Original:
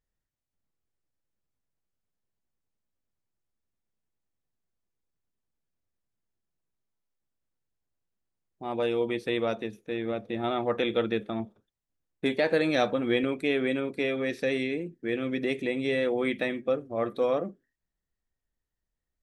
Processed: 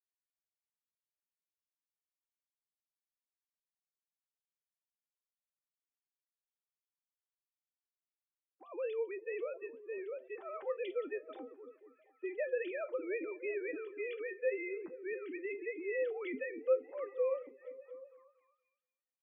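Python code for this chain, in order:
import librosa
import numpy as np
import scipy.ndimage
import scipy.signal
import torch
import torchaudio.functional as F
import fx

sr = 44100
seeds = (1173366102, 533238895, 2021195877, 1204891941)

y = fx.sine_speech(x, sr)
y = fx.notch(y, sr, hz=700.0, q=13.0)
y = fx.comb_fb(y, sr, f0_hz=260.0, decay_s=0.16, harmonics='all', damping=0.0, mix_pct=60)
y = fx.dynamic_eq(y, sr, hz=590.0, q=0.78, threshold_db=-36.0, ratio=4.0, max_db=-3)
y = fx.echo_stepped(y, sr, ms=234, hz=230.0, octaves=0.7, feedback_pct=70, wet_db=-11.0)
y = y * 10.0 ** (-3.0 / 20.0)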